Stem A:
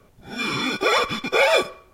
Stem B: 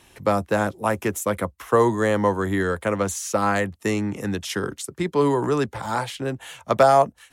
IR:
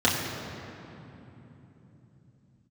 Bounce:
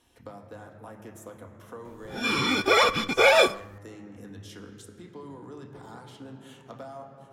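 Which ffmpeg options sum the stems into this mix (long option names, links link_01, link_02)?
-filter_complex "[0:a]adelay=1850,volume=-0.5dB[link_01];[1:a]acompressor=threshold=-34dB:ratio=3,volume=-14.5dB,asplit=2[link_02][link_03];[link_03]volume=-17dB[link_04];[2:a]atrim=start_sample=2205[link_05];[link_04][link_05]afir=irnorm=-1:irlink=0[link_06];[link_01][link_02][link_06]amix=inputs=3:normalize=0"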